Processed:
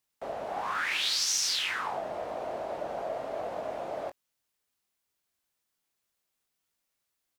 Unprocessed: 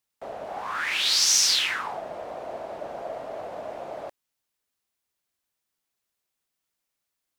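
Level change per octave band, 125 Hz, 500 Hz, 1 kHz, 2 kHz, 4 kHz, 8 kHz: -0.5 dB, 0.0 dB, -0.5 dB, -4.0 dB, -7.0 dB, -8.0 dB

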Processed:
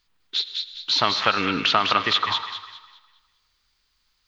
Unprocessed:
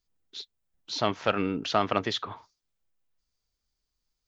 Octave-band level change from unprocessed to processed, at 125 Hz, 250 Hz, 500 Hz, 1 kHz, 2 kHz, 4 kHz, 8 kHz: +0.5 dB, +1.0 dB, -0.5 dB, +8.0 dB, +11.0 dB, +13.5 dB, no reading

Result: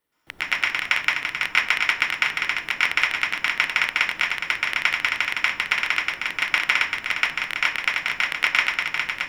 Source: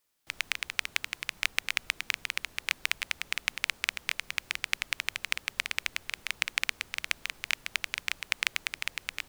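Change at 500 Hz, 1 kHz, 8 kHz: +11.5 dB, +15.5 dB, 0.0 dB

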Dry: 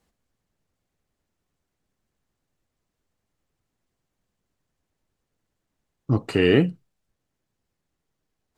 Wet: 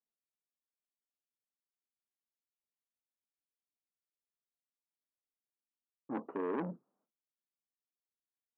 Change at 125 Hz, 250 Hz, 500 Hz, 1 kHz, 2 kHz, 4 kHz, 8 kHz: -25.5 dB, -17.5 dB, -17.0 dB, -4.5 dB, -22.5 dB, under -35 dB, no reading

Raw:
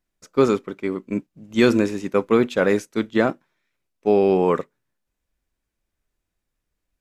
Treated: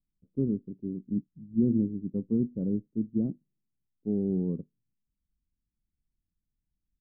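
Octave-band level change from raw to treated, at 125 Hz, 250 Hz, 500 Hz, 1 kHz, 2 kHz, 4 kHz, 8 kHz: -2.5 dB, -6.0 dB, -18.5 dB, under -35 dB, under -40 dB, under -40 dB, no reading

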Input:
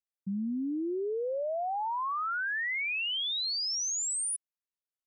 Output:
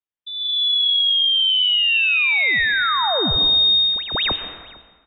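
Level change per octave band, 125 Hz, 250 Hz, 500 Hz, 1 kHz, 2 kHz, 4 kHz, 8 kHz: no reading, 0.0 dB, +3.0 dB, +7.5 dB, +15.0 dB, +20.5 dB, under -40 dB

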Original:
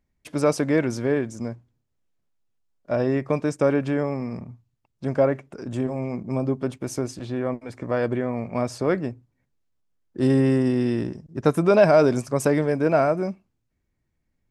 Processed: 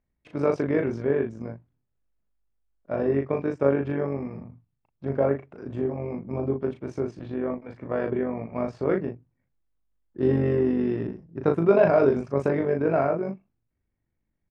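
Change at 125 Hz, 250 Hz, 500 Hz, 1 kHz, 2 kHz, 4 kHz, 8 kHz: -4.0 dB, -3.5 dB, -1.5 dB, -3.5 dB, -5.0 dB, under -10 dB, under -20 dB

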